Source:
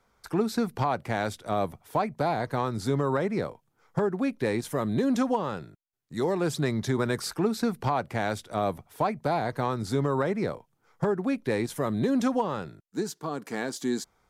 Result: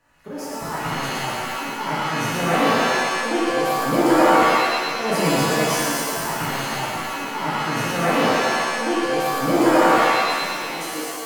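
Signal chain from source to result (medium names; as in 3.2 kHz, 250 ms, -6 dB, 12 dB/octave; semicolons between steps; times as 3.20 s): slow attack 280 ms; tape speed +27%; thinning echo 118 ms, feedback 70%, high-pass 460 Hz, level -4.5 dB; pitch-shifted reverb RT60 1.4 s, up +7 st, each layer -2 dB, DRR -7 dB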